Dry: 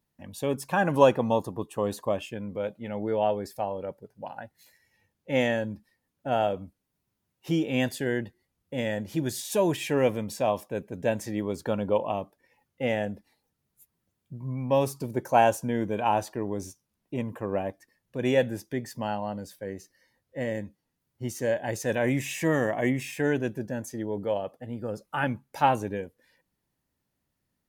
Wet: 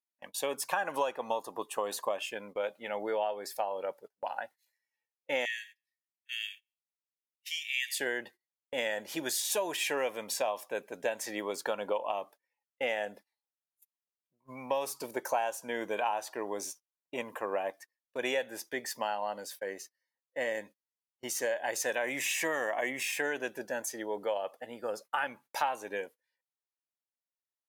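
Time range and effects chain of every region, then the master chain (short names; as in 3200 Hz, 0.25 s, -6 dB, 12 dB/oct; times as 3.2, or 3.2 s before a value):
5.45–8 steep high-pass 1800 Hz 96 dB/oct + feedback echo 90 ms, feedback 38%, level -20 dB
whole clip: HPF 670 Hz 12 dB/oct; gate -53 dBFS, range -25 dB; compressor 6:1, threshold -34 dBFS; gain +5.5 dB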